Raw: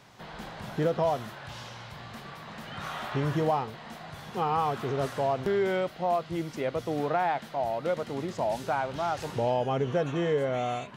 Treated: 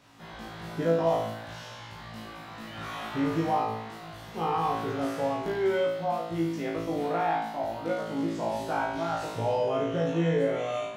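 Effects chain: peaking EQ 300 Hz +7 dB 0.28 oct; flutter echo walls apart 3.1 m, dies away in 0.74 s; trim -5.5 dB

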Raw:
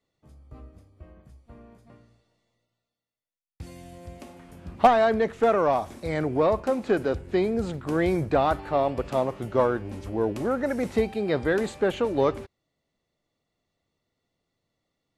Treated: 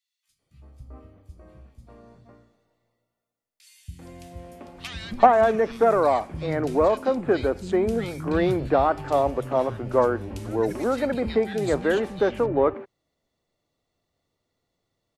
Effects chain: three bands offset in time highs, lows, mids 280/390 ms, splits 190/2300 Hz; trim +2.5 dB

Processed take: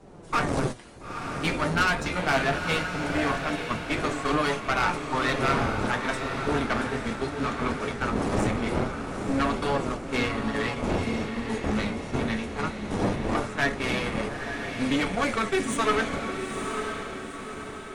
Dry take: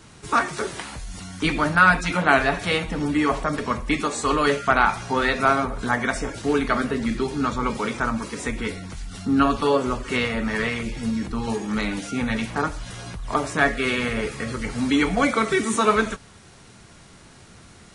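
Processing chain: wind noise 450 Hz -29 dBFS; gate -24 dBFS, range -11 dB; valve stage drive 18 dB, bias 0.75; flange 0.21 Hz, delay 5 ms, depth 9.9 ms, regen +51%; echo that smears into a reverb 923 ms, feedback 48%, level -6 dB; trim +3.5 dB

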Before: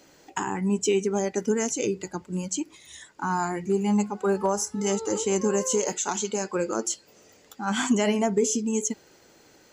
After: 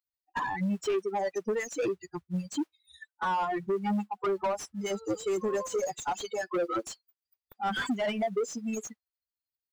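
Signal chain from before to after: expander on every frequency bin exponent 3; compression 6:1, threshold -35 dBFS, peak gain reduction 14.5 dB; modulation noise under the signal 32 dB; overdrive pedal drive 24 dB, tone 1.2 kHz, clips at -23 dBFS; trim +3.5 dB

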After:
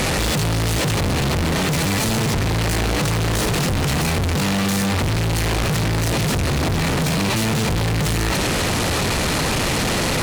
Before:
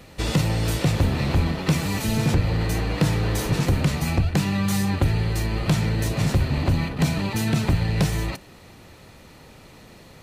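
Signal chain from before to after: one-bit delta coder 64 kbps, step -32.5 dBFS; fuzz box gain 42 dB, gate -46 dBFS; trim -5.5 dB

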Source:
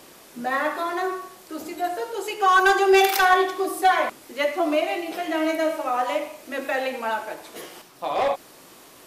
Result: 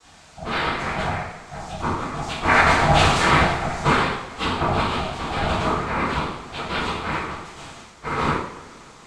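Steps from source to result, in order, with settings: noise-vocoded speech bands 6; ring modulator 410 Hz; two-slope reverb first 0.62 s, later 3.1 s, from -20 dB, DRR -8.5 dB; trim -4.5 dB

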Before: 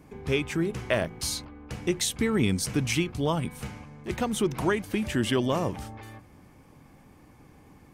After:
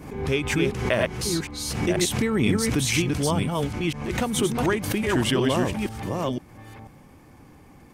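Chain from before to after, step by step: chunks repeated in reverse 491 ms, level -2 dB; swell ahead of each attack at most 64 dB/s; trim +1.5 dB

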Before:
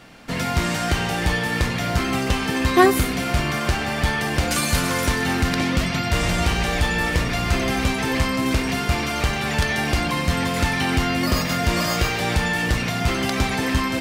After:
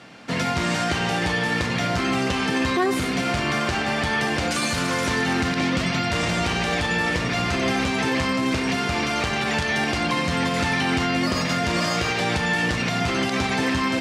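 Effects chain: hum notches 50/100/150 Hz; peak limiter -14.5 dBFS, peak gain reduction 10.5 dB; band-pass 110–7500 Hz; trim +1.5 dB

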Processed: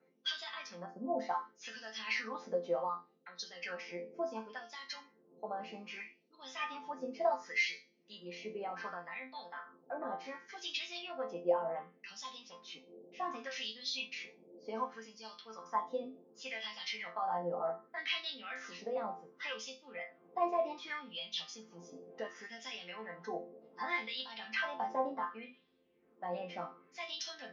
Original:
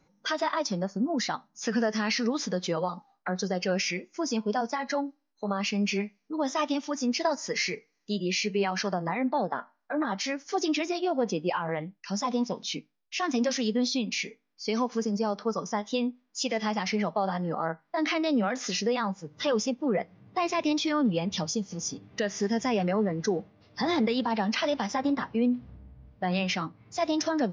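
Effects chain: band noise 140–440 Hz -46 dBFS; chord resonator F3 major, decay 0.31 s; wah-wah 0.67 Hz 600–3700 Hz, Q 2.6; trim +15.5 dB

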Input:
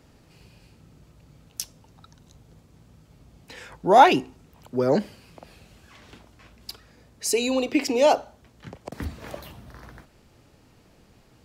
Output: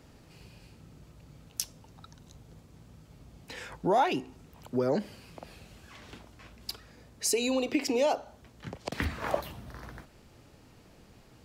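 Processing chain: compression 3:1, threshold -26 dBFS, peak gain reduction 13.5 dB; 8.79–9.40 s: peaking EQ 5.1 kHz -> 690 Hz +11.5 dB 1.7 oct

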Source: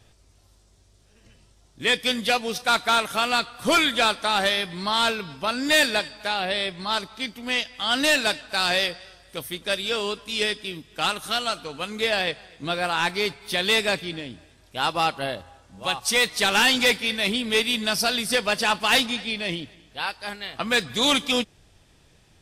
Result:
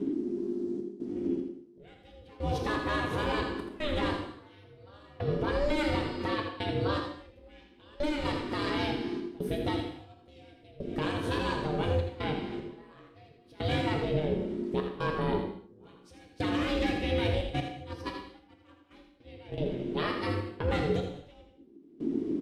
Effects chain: RIAA curve playback; 17.41–19.58 s: gate -18 dBFS, range -28 dB; bass shelf 140 Hz +11.5 dB; compression 4:1, threshold -29 dBFS, peak gain reduction 17.5 dB; peak limiter -24 dBFS, peak gain reduction 7.5 dB; trance gate "xxxx.xx.....xx" 75 bpm -24 dB; ring modulator 300 Hz; delay 82 ms -8 dB; gated-style reverb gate 260 ms falling, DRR 2.5 dB; trim +4 dB

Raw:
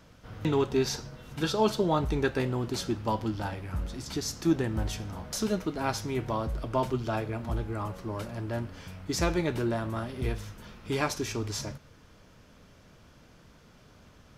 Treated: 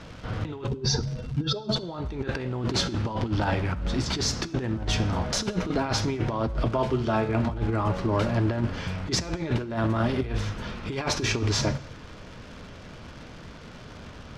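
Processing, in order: 0.67–1.76 s: spectral contrast enhancement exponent 1.9; in parallel at -1 dB: peak limiter -24.5 dBFS, peak gain reduction 11.5 dB; 6.68–7.35 s: on the sum: feedback comb 73 Hz, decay 0.33 s, harmonics all, mix 70%; crackle 230 per s -41 dBFS; low-pass 4.8 kHz 12 dB/octave; compressor with a negative ratio -29 dBFS, ratio -0.5; on a send at -16 dB: reverberation, pre-delay 3 ms; on the sum: trim +3.5 dB

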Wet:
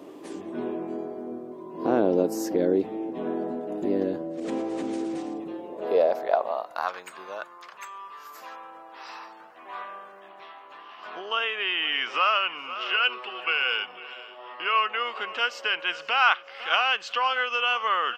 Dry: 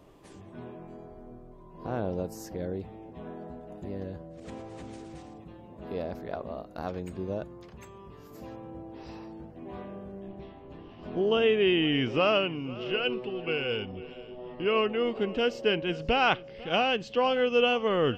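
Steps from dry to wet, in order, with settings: compression 5:1, threshold -27 dBFS, peak gain reduction 8 dB; high-pass sweep 300 Hz -> 1.2 kHz, 5.35–6.97 s; speakerphone echo 370 ms, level -27 dB; trim +8.5 dB

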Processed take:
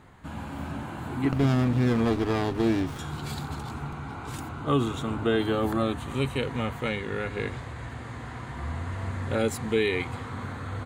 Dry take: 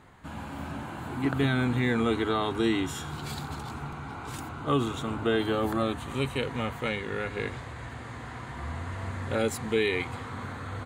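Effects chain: bass shelf 350 Hz +3.5 dB; 1.32–2.99 s: sliding maximum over 17 samples

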